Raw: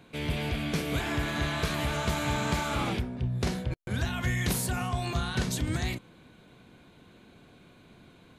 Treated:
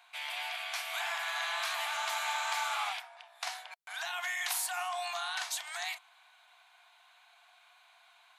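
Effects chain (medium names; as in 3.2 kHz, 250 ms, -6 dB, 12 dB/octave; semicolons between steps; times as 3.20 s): Chebyshev high-pass 700 Hz, order 6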